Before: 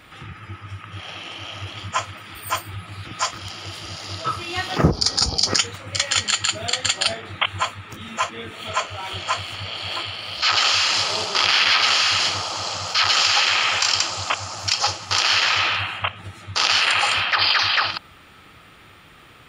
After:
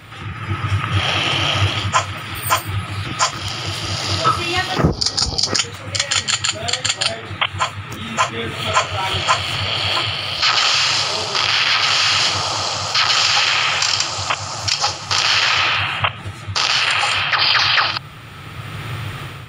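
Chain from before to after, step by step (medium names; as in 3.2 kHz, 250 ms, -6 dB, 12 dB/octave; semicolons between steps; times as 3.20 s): in parallel at +1.5 dB: compression, threshold -26 dBFS, peak gain reduction 14.5 dB; on the sum: band noise 92–150 Hz -39 dBFS; level rider; trim -1 dB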